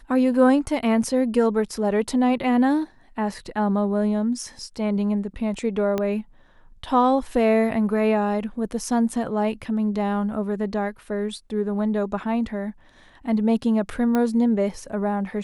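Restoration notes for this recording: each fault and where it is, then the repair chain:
5.98 s: pop -12 dBFS
14.15 s: pop -11 dBFS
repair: de-click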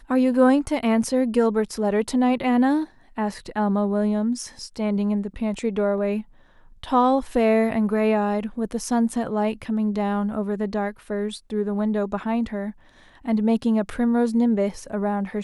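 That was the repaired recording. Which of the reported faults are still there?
5.98 s: pop

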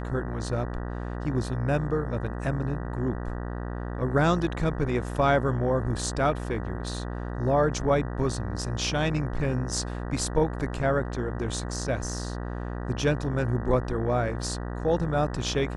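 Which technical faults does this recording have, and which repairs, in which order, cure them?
buzz 60 Hz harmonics 32 -33 dBFS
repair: de-hum 60 Hz, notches 32

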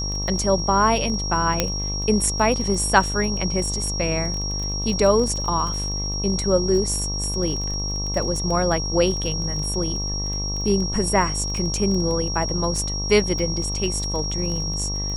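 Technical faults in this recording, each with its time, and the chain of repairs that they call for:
buzz 50 Hz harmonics 24 -28 dBFS
crackle 20 per s -27 dBFS
whine 5.6 kHz -27 dBFS
1.60 s: pop -3 dBFS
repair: de-click; de-hum 50 Hz, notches 24; band-stop 5.6 kHz, Q 30

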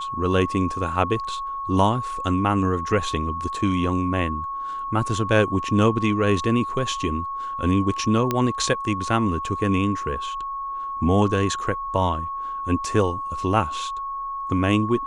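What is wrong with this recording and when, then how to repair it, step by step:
whine 1.1 kHz -27 dBFS
8.31 s: pop -8 dBFS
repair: de-click; band-stop 1.1 kHz, Q 30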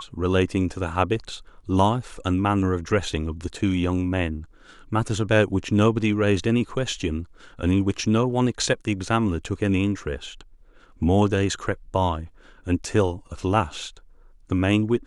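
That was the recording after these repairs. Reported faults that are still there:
nothing left

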